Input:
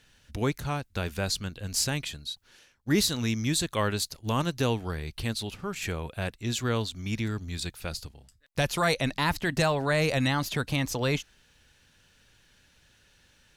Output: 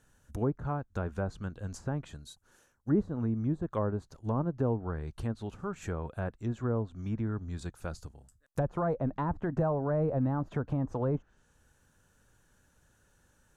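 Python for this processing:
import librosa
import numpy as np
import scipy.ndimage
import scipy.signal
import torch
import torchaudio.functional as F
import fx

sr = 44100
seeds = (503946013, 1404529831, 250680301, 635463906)

y = fx.band_shelf(x, sr, hz=3200.0, db=-14.0, octaves=1.7)
y = fx.env_lowpass_down(y, sr, base_hz=790.0, full_db=-24.5)
y = y * 10.0 ** (-2.0 / 20.0)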